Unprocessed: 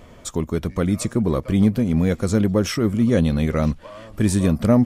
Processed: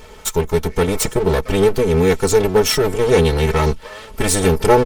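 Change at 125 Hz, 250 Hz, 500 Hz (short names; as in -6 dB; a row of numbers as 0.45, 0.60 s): 0.0, -3.0, +9.5 dB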